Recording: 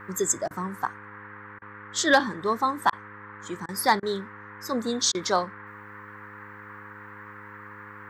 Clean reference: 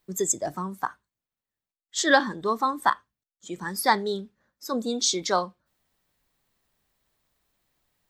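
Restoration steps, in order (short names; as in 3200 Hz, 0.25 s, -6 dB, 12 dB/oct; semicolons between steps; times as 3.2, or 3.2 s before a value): clip repair -10 dBFS; de-hum 103.3 Hz, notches 5; interpolate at 0.48/1.59/2.9/3.66/4/5.12, 26 ms; noise print and reduce 30 dB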